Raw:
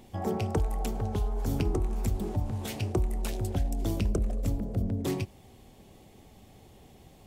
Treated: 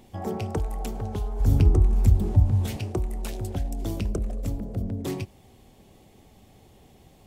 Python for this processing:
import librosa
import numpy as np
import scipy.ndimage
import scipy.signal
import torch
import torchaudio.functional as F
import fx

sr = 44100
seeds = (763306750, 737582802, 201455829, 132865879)

y = fx.peak_eq(x, sr, hz=73.0, db=14.5, octaves=2.2, at=(1.4, 2.77))